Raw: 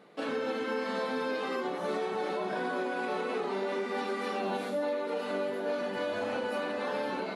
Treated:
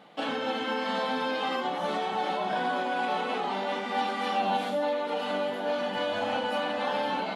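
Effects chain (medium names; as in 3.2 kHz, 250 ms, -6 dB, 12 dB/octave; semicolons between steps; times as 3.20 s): graphic EQ with 31 bands 400 Hz -11 dB, 800 Hz +8 dB, 3.15 kHz +9 dB, 10 kHz -4 dB; trim +3 dB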